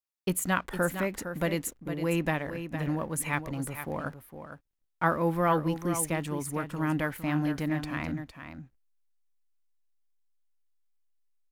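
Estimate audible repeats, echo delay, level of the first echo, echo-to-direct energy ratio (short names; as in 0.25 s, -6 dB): 1, 0.459 s, -9.5 dB, -9.5 dB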